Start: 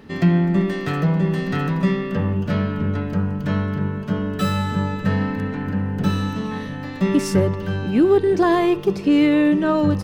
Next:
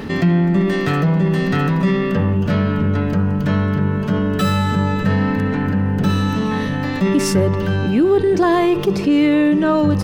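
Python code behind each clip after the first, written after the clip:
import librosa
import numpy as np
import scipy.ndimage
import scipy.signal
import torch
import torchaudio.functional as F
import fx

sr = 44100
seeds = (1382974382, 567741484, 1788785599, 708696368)

y = fx.env_flatten(x, sr, amount_pct=50)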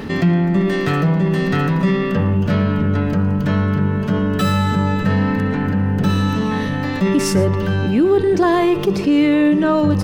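y = x + 10.0 ** (-18.0 / 20.0) * np.pad(x, (int(114 * sr / 1000.0), 0))[:len(x)]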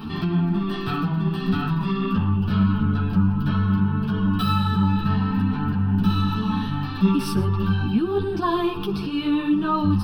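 y = fx.fixed_phaser(x, sr, hz=2000.0, stages=6)
y = fx.ensemble(y, sr)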